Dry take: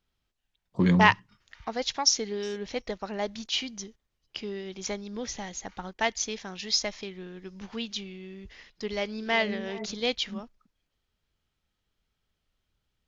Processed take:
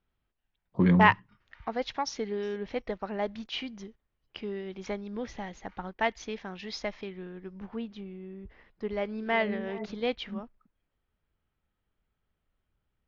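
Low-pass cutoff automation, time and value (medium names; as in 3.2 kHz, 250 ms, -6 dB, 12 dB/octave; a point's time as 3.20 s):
7.19 s 2.3 kHz
7.77 s 1.2 kHz
8.55 s 1.2 kHz
9.25 s 2 kHz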